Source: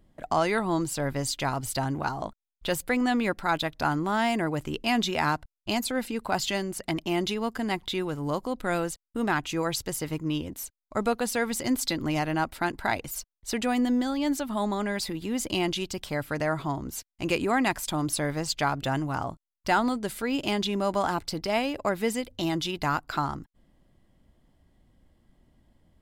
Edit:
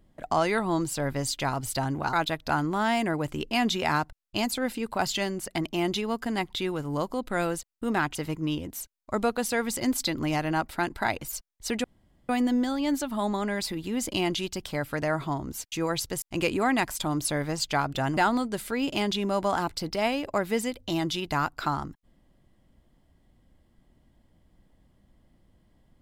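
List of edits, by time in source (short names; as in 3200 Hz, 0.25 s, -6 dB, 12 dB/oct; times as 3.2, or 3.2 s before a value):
2.13–3.46 cut
9.48–9.98 move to 17.1
13.67 insert room tone 0.45 s
19.05–19.68 cut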